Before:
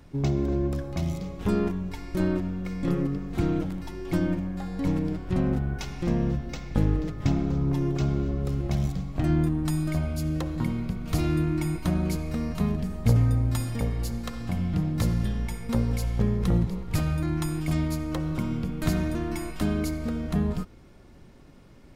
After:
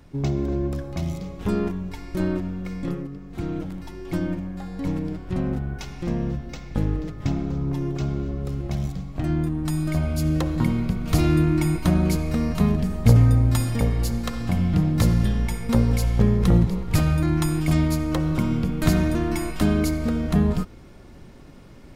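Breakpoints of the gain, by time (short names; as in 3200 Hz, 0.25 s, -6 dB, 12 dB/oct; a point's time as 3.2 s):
2.78 s +1 dB
3.09 s -7.5 dB
3.76 s -0.5 dB
9.46 s -0.5 dB
10.27 s +6 dB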